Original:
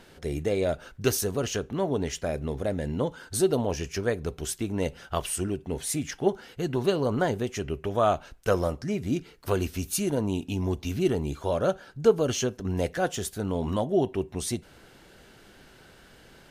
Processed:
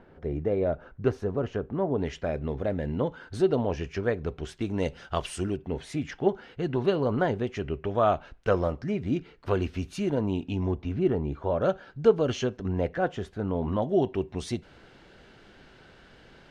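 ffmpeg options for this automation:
ffmpeg -i in.wav -af "asetnsamples=nb_out_samples=441:pad=0,asendcmd='1.98 lowpass f 2800;4.61 lowpass f 5300;5.57 lowpass f 3000;10.71 lowpass f 1700;11.62 lowpass f 3400;12.68 lowpass f 2000;13.82 lowpass f 4300',lowpass=1300" out.wav

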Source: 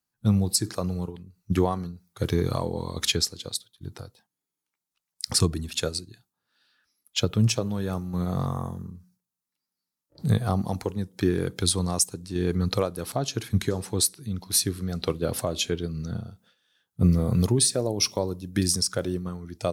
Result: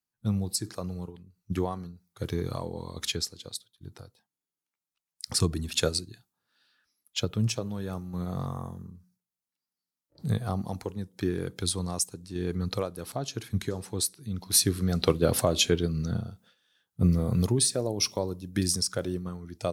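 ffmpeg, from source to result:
ffmpeg -i in.wav -af "volume=11dB,afade=type=in:start_time=5.27:duration=0.58:silence=0.375837,afade=type=out:start_time=5.85:duration=1.46:silence=0.421697,afade=type=in:start_time=14.18:duration=0.68:silence=0.354813,afade=type=out:start_time=15.68:duration=1.4:silence=0.473151" out.wav

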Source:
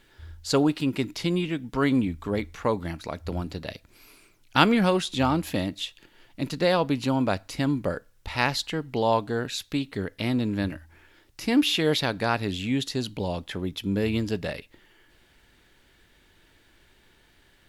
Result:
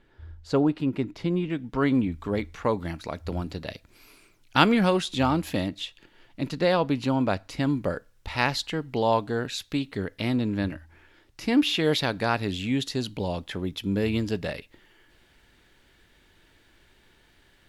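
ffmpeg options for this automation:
ffmpeg -i in.wav -af "asetnsamples=nb_out_samples=441:pad=0,asendcmd='1.5 lowpass f 2700;2.12 lowpass f 6000;2.79 lowpass f 9800;5.68 lowpass f 4500;7.65 lowpass f 8400;10.36 lowpass f 4900;11.83 lowpass f 11000',lowpass=frequency=1100:poles=1" out.wav

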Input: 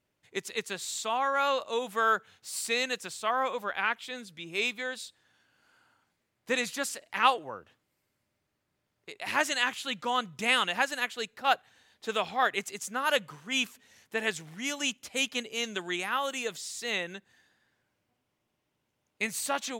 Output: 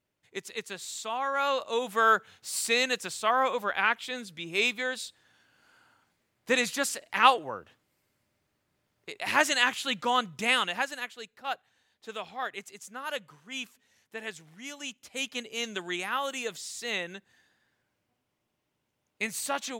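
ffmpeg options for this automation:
ffmpeg -i in.wav -af "volume=11dB,afade=type=in:start_time=1.16:duration=0.95:silence=0.473151,afade=type=out:start_time=10.06:duration=1.12:silence=0.266073,afade=type=in:start_time=14.9:duration=0.74:silence=0.421697" out.wav

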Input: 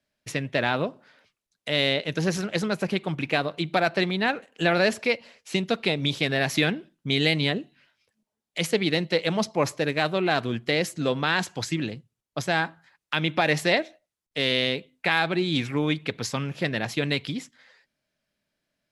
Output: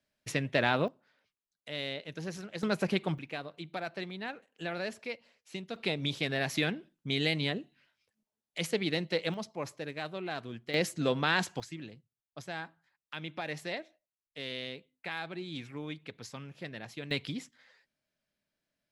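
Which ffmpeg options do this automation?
ffmpeg -i in.wav -af "asetnsamples=nb_out_samples=441:pad=0,asendcmd='0.88 volume volume -14dB;2.63 volume volume -3.5dB;3.18 volume volume -15dB;5.76 volume volume -7.5dB;9.34 volume volume -14dB;10.74 volume volume -4dB;11.6 volume volume -15.5dB;17.11 volume volume -6.5dB',volume=-3dB" out.wav

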